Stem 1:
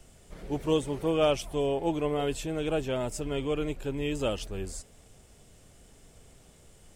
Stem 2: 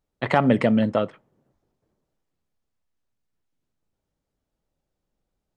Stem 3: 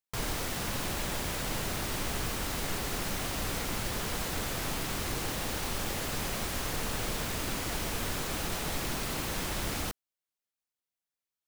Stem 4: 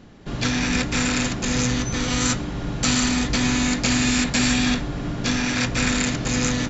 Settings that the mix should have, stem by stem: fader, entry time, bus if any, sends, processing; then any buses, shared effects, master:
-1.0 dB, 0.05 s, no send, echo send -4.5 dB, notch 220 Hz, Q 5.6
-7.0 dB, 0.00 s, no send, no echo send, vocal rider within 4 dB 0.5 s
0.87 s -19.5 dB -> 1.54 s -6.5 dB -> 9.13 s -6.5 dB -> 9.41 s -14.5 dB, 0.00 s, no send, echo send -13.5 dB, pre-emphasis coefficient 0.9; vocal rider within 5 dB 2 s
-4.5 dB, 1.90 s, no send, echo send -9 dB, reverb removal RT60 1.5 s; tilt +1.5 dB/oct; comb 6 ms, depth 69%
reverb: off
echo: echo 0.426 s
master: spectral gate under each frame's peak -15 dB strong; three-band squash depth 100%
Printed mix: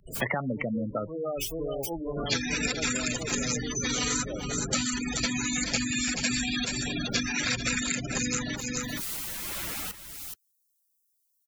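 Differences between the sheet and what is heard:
stem 1 -1.0 dB -> -10.5 dB; stem 4: missing comb 6 ms, depth 69%

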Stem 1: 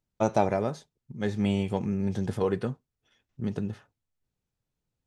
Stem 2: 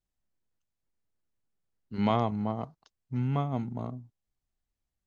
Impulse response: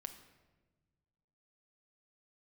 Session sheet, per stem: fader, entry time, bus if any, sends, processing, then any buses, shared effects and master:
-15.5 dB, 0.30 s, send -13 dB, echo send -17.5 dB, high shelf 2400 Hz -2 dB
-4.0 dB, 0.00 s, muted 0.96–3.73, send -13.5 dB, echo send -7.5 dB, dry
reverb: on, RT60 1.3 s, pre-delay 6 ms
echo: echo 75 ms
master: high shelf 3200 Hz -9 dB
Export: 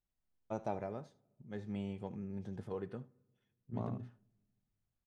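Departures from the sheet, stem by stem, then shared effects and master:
stem 1: missing high shelf 2400 Hz -2 dB; stem 2: send -13.5 dB -> -19.5 dB

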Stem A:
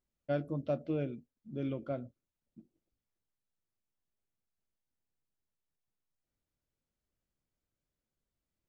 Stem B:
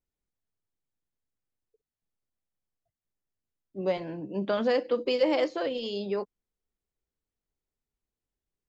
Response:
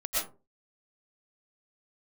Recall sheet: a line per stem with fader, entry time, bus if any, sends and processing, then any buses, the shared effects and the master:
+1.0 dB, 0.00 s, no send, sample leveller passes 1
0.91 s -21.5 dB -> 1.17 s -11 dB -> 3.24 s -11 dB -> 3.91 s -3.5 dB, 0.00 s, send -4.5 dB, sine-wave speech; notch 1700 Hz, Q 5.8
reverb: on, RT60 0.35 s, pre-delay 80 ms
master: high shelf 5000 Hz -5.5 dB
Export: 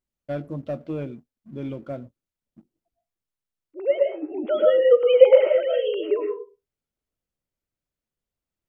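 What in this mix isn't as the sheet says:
stem B -21.5 dB -> -14.0 dB; master: missing high shelf 5000 Hz -5.5 dB

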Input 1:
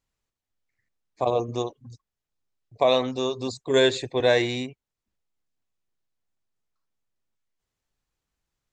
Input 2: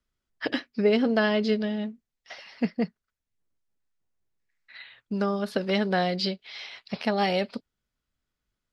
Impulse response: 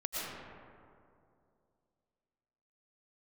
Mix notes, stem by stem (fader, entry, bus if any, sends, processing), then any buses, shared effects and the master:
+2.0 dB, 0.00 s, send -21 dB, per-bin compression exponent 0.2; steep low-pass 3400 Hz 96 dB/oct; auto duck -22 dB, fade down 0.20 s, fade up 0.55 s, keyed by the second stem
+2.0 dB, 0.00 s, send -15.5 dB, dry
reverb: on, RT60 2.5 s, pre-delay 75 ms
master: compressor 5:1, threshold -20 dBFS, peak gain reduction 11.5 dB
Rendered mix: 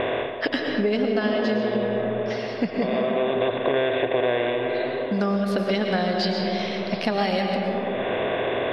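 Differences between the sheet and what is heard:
stem 2: send -15.5 dB -> -9.5 dB; reverb return +8.0 dB

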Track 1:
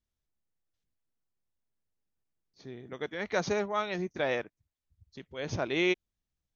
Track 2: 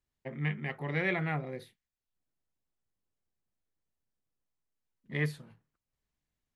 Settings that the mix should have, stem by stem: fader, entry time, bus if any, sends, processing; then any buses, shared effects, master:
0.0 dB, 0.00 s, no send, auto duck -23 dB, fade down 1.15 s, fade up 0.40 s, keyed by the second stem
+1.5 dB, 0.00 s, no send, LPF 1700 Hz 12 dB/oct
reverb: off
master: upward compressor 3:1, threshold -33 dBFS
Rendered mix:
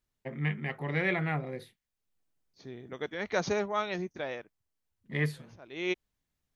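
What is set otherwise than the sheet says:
stem 2: missing LPF 1700 Hz 12 dB/oct; master: missing upward compressor 3:1, threshold -33 dBFS

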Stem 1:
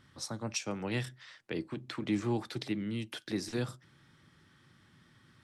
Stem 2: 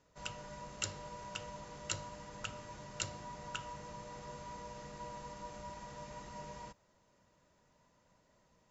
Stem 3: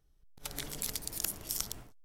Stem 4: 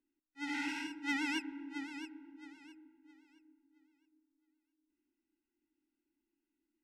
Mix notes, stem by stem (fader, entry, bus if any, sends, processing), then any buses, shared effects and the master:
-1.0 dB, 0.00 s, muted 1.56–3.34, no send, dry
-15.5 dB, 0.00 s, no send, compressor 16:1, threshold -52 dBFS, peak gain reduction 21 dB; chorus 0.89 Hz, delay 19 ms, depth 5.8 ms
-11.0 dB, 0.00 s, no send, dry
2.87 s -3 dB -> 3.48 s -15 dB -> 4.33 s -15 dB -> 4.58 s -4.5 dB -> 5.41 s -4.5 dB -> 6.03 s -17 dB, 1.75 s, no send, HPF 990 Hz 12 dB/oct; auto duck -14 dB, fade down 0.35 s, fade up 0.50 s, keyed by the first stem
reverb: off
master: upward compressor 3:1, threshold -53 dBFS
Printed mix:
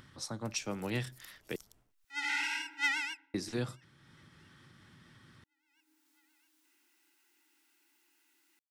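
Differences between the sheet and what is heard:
stem 2: muted; stem 3 -11.0 dB -> -21.5 dB; stem 4 -3.0 dB -> +7.5 dB

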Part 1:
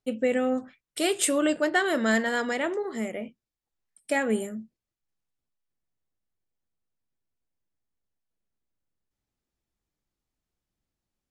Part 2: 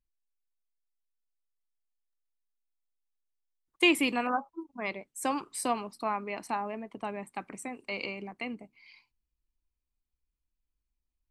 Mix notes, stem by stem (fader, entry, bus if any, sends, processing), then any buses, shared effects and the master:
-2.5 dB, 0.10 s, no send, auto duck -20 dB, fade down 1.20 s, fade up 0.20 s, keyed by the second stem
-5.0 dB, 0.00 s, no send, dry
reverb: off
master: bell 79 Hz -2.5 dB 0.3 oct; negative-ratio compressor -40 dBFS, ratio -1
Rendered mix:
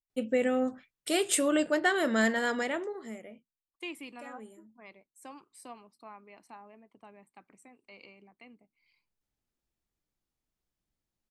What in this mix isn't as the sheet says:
stem 2 -5.0 dB -> -17.0 dB; master: missing negative-ratio compressor -40 dBFS, ratio -1

